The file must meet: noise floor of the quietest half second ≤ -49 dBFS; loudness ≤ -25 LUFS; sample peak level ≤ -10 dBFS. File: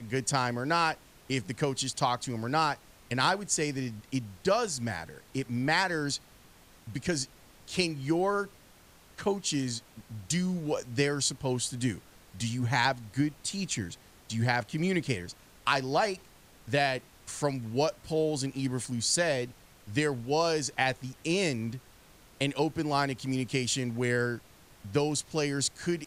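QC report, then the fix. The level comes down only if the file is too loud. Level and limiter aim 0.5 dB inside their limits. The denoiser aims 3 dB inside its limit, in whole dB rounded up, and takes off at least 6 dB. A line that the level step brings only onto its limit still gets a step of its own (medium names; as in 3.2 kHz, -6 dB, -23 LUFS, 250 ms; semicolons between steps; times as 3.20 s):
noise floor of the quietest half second -57 dBFS: pass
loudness -30.5 LUFS: pass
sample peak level -13.0 dBFS: pass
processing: none needed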